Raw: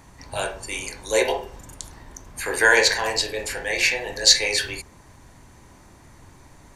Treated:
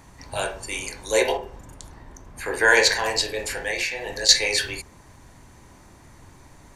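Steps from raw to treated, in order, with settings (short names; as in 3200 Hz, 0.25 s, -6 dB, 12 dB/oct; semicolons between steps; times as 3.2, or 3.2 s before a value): 1.37–2.68 high shelf 2600 Hz -8.5 dB; 3.69–4.29 compressor 10:1, threshold -23 dBFS, peak gain reduction 12 dB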